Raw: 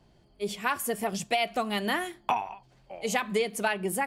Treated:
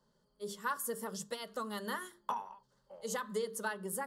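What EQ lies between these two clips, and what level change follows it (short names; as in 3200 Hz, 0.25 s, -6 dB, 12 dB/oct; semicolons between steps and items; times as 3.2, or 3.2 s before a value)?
low shelf 180 Hz -9 dB; notches 50/100/150/200/250/300/350/400/450 Hz; fixed phaser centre 480 Hz, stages 8; -5.0 dB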